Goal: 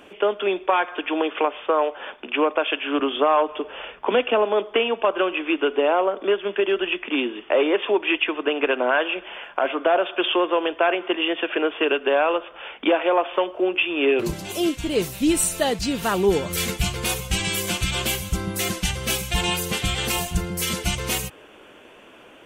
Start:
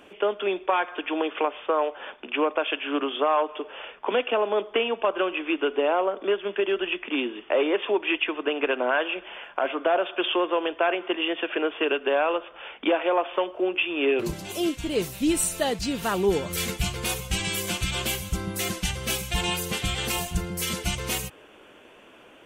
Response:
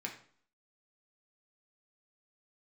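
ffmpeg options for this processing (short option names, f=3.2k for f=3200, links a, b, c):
-filter_complex "[0:a]asettb=1/sr,asplit=3[a][b][c];[a]atrim=end=2.994[d];[b]atrim=start=2.99:end=4.45,asetpts=PTS-STARTPTS,afade=t=in:d=0.004:c=qsin,afade=t=out:st=1.456:d=0.004:c=qsin,equalizer=f=70:w=0.52:g=11[e];[c]atrim=start=4.446[f];[d][e]acrossfade=d=0.004:c1=hsin:c2=qsin[g];[g][f]acrossfade=d=0.004:c1=qsin:c2=hsin,volume=3.5dB"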